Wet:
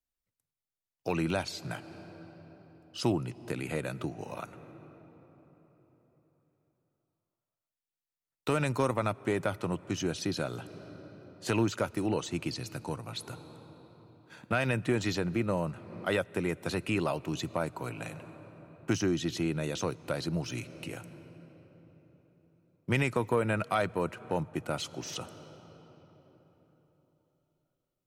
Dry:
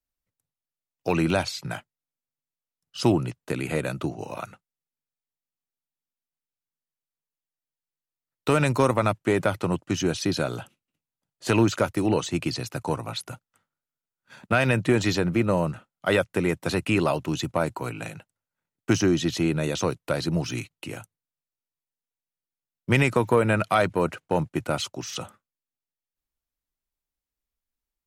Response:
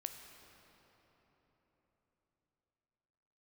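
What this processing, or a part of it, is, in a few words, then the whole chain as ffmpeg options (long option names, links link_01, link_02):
ducked reverb: -filter_complex "[0:a]asplit=3[link_01][link_02][link_03];[1:a]atrim=start_sample=2205[link_04];[link_02][link_04]afir=irnorm=-1:irlink=0[link_05];[link_03]apad=whole_len=1237843[link_06];[link_05][link_06]sidechaincompress=threshold=-33dB:ratio=10:attack=20:release=340,volume=0dB[link_07];[link_01][link_07]amix=inputs=2:normalize=0,asettb=1/sr,asplit=3[link_08][link_09][link_10];[link_08]atrim=end=12.544[link_11];[link_09]atrim=start=12.54:end=13.19,asetpts=PTS-STARTPTS,afade=type=in:duration=0.004:curve=qsin,afade=type=out:start_time=0.646:duration=0.004:curve=qsin,equalizer=frequency=740:width_type=o:width=2.2:gain=-4[link_12];[link_10]atrim=start=13.186[link_13];[link_11][link_12]acrossfade=duration=0.004:curve1=hsin:curve2=qsin[link_14];[link_14][link_13]acrossfade=duration=0.004:curve1=qsin:curve2=hsin,volume=-8.5dB"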